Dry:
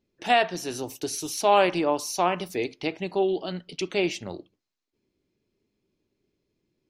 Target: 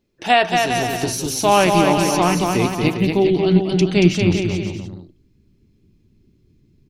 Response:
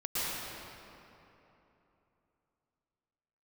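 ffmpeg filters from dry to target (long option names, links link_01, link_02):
-filter_complex "[0:a]asubboost=boost=10:cutoff=190,asplit=2[link_01][link_02];[link_02]aecho=0:1:230|402.5|531.9|628.9|701.7:0.631|0.398|0.251|0.158|0.1[link_03];[link_01][link_03]amix=inputs=2:normalize=0,volume=6.5dB"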